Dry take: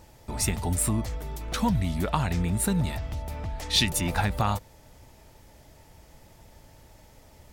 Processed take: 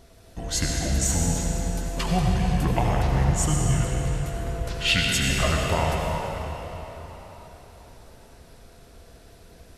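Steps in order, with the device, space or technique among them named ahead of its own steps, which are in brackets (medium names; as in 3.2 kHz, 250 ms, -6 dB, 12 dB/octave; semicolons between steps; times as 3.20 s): slowed and reverbed (tape speed -23%; reverberation RT60 4.3 s, pre-delay 69 ms, DRR -1.5 dB)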